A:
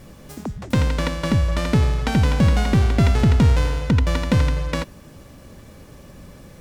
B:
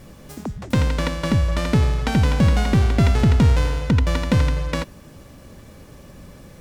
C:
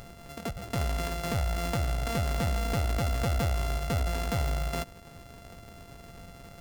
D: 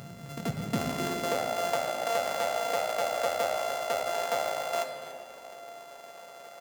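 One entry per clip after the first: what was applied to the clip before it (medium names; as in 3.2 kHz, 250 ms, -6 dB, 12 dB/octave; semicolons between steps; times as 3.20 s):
no audible change
sorted samples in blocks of 64 samples; upward compressor, threshold -37 dBFS; peak limiter -16 dBFS, peak gain reduction 8.5 dB; trim -6 dB
high-pass sweep 140 Hz -> 620 Hz, 0.49–1.43 s; delay 288 ms -15 dB; on a send at -4.5 dB: reverberation RT60 2.5 s, pre-delay 6 ms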